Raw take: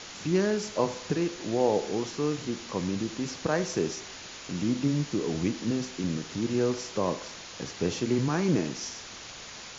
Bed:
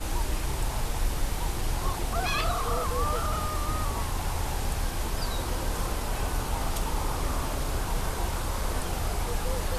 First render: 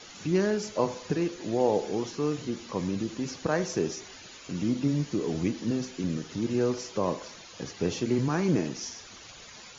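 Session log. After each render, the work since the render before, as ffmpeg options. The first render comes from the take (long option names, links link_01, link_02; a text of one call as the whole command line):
ffmpeg -i in.wav -af "afftdn=noise_reduction=10:noise_floor=-44" out.wav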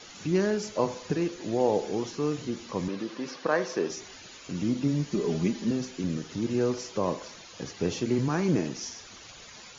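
ffmpeg -i in.wav -filter_complex "[0:a]asettb=1/sr,asplit=3[link_01][link_02][link_03];[link_01]atrim=end=2.884[link_04];[link_02]atrim=start=2.88:end=3.9,asetpts=PTS-STARTPTS,afade=type=in:duration=0.004:curve=qsin,afade=type=out:start_time=1.016:duration=0.004:curve=qsin,highpass=260,equalizer=frequency=530:width_type=q:width=4:gain=4,equalizer=frequency=1100:width_type=q:width=4:gain=6,equalizer=frequency=1700:width_type=q:width=4:gain=4,lowpass=frequency=5600:width=0.5412,lowpass=frequency=5600:width=1.3066[link_05];[link_03]atrim=start=3.896[link_06];[link_04][link_05]acrossfade=duration=0.004:curve1=hsin:curve2=qsin[link_07];[link_07][link_06]acrossfade=duration=0.004:curve1=qsin:curve2=hsin,asettb=1/sr,asplit=3[link_08][link_09][link_10];[link_08]atrim=end=5.124[link_11];[link_09]atrim=start=5.12:end=5.71,asetpts=PTS-STARTPTS,afade=type=in:duration=0.004:curve=qsin,afade=type=out:start_time=0.586:duration=0.004:curve=qsin,aecho=1:1:5:0.65,atrim=end_sample=26019[link_12];[link_10]atrim=start=5.706[link_13];[link_11][link_12]acrossfade=duration=0.004:curve1=hsin:curve2=qsin[link_14];[link_14][link_13]acrossfade=duration=0.004:curve1=qsin:curve2=hsin" out.wav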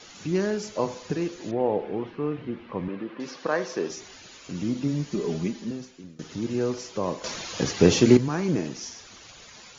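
ffmpeg -i in.wav -filter_complex "[0:a]asettb=1/sr,asplit=3[link_01][link_02][link_03];[link_01]atrim=end=1.514[link_04];[link_02]atrim=start=1.51:end=3.2,asetpts=PTS-STARTPTS,afade=type=in:duration=0.004:curve=qsin,afade=type=out:start_time=1.686:duration=0.004:curve=qsin,lowpass=frequency=2700:width=0.5412,lowpass=frequency=2700:width=1.3066[link_05];[link_03]atrim=start=3.196[link_06];[link_04][link_05]acrossfade=duration=0.004:curve1=hsin:curve2=qsin[link_07];[link_07][link_06]acrossfade=duration=0.004:curve1=qsin:curve2=hsin,asplit=4[link_08][link_09][link_10][link_11];[link_08]atrim=end=6.19,asetpts=PTS-STARTPTS,afade=type=out:start_time=5.3:duration=0.89:silence=0.0630957[link_12];[link_09]atrim=start=6.19:end=7.242,asetpts=PTS-STARTPTS,afade=type=in:duration=0.004:curve=hsin:silence=0.0630957[link_13];[link_10]atrim=start=7.238:end=8.172,asetpts=PTS-STARTPTS,volume=11.5dB[link_14];[link_11]atrim=start=8.168[link_15];[link_12][link_13]concat=n=2:v=0:a=1[link_16];[link_16][link_14]acrossfade=duration=0.004:curve1=hsin:curve2=hsin[link_17];[link_17][link_15]acrossfade=duration=0.004:curve1=hsin:curve2=hsin" out.wav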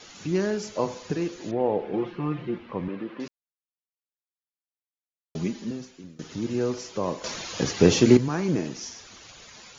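ffmpeg -i in.wav -filter_complex "[0:a]asettb=1/sr,asplit=3[link_01][link_02][link_03];[link_01]atrim=end=1.934[link_04];[link_02]atrim=start=1.93:end=2.58,asetpts=PTS-STARTPTS,afade=type=in:duration=0.004:curve=qsin,afade=type=out:start_time=0.646:duration=0.004:curve=qsin,aecho=1:1:5.7:0.94,atrim=end_sample=28665[link_05];[link_03]atrim=start=2.576[link_06];[link_04][link_05]acrossfade=duration=0.004:curve1=hsin:curve2=qsin[link_07];[link_07][link_06]acrossfade=duration=0.004:curve1=qsin:curve2=hsin,asplit=3[link_08][link_09][link_10];[link_08]atrim=end=3.28,asetpts=PTS-STARTPTS,afade=type=out:start_time=3.276:duration=0.004:curve=hsin[link_11];[link_09]atrim=start=3.28:end=5.35,asetpts=PTS-STARTPTS,volume=0[link_12];[link_10]atrim=start=5.35,asetpts=PTS-STARTPTS,afade=type=in:duration=0.004:curve=hsin[link_13];[link_11][link_12][link_13]concat=n=3:v=0:a=1" out.wav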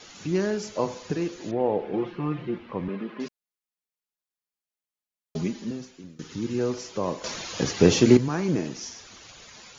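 ffmpeg -i in.wav -filter_complex "[0:a]asettb=1/sr,asplit=3[link_01][link_02][link_03];[link_01]atrim=end=2.884[link_04];[link_02]atrim=start=2.88:end=5.41,asetpts=PTS-STARTPTS,afade=type=in:duration=0.004:curve=qsin,afade=type=out:start_time=2.526:duration=0.004:curve=qsin,aecho=1:1:4.8:0.65,atrim=end_sample=111573[link_05];[link_03]atrim=start=5.406[link_06];[link_04][link_05]acrossfade=duration=0.004:curve1=hsin:curve2=qsin[link_07];[link_07][link_06]acrossfade=duration=0.004:curve1=qsin:curve2=hsin,asettb=1/sr,asplit=3[link_08][link_09][link_10];[link_08]atrim=end=6.164[link_11];[link_09]atrim=start=6.16:end=6.59,asetpts=PTS-STARTPTS,afade=type=in:duration=0.004:curve=qsin,afade=type=out:start_time=0.426:duration=0.004:curve=qsin,equalizer=frequency=650:width_type=o:width=0.36:gain=-13[link_12];[link_10]atrim=start=6.586[link_13];[link_11][link_12]acrossfade=duration=0.004:curve1=hsin:curve2=qsin[link_14];[link_14][link_13]acrossfade=duration=0.004:curve1=qsin:curve2=hsin" out.wav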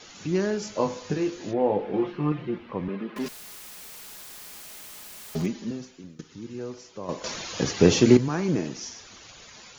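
ffmpeg -i in.wav -filter_complex "[0:a]asettb=1/sr,asplit=3[link_01][link_02][link_03];[link_01]atrim=end=0.604[link_04];[link_02]atrim=start=0.6:end=2.32,asetpts=PTS-STARTPTS,afade=type=in:duration=0.004:curve=qsin,afade=type=out:start_time=1.716:duration=0.004:curve=qsin,asplit=2[link_05][link_06];[link_06]adelay=20,volume=-5.5dB[link_07];[link_05][link_07]amix=inputs=2:normalize=0,atrim=end_sample=75852[link_08];[link_03]atrim=start=2.316[link_09];[link_04][link_08]acrossfade=duration=0.004:curve1=hsin:curve2=qsin[link_10];[link_10][link_09]acrossfade=duration=0.004:curve1=qsin:curve2=hsin,asettb=1/sr,asplit=3[link_11][link_12][link_13];[link_11]atrim=end=3.164[link_14];[link_12]atrim=start=3.16:end=5.46,asetpts=PTS-STARTPTS,afade=type=in:duration=0.004:curve=qsin,afade=type=out:start_time=2.296:duration=0.004:curve=qsin,aeval=exprs='val(0)+0.5*0.02*sgn(val(0))':channel_layout=same[link_15];[link_13]atrim=start=5.456[link_16];[link_14][link_15]acrossfade=duration=0.004:curve1=hsin:curve2=qsin[link_17];[link_17][link_16]acrossfade=duration=0.004:curve1=qsin:curve2=hsin,asplit=3[link_18][link_19][link_20];[link_18]atrim=end=6.212[link_21];[link_19]atrim=start=6.208:end=7.092,asetpts=PTS-STARTPTS,volume=-9dB[link_22];[link_20]atrim=start=7.088[link_23];[link_21][link_22]acrossfade=duration=0.004:curve1=hsin:curve2=hsin[link_24];[link_24][link_23]acrossfade=duration=0.004:curve1=hsin:curve2=hsin" out.wav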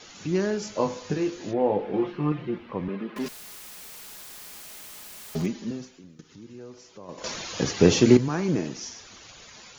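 ffmpeg -i in.wav -filter_complex "[0:a]asettb=1/sr,asplit=3[link_01][link_02][link_03];[link_01]atrim=end=5.884[link_04];[link_02]atrim=start=5.88:end=7.18,asetpts=PTS-STARTPTS,afade=type=in:duration=0.004:curve=qsin,afade=type=out:start_time=1.296:duration=0.004:curve=qsin,acompressor=threshold=-51dB:ratio=1.5:attack=3.2:release=140:knee=1:detection=peak[link_05];[link_03]atrim=start=7.176[link_06];[link_04][link_05]acrossfade=duration=0.004:curve1=hsin:curve2=qsin[link_07];[link_07][link_06]acrossfade=duration=0.004:curve1=qsin:curve2=hsin" out.wav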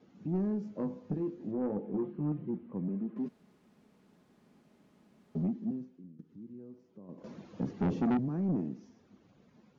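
ffmpeg -i in.wav -af "bandpass=frequency=210:width_type=q:width=2:csg=0,asoftclip=type=tanh:threshold=-25dB" out.wav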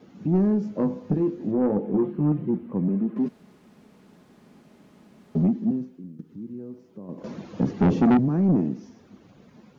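ffmpeg -i in.wav -af "volume=11dB" out.wav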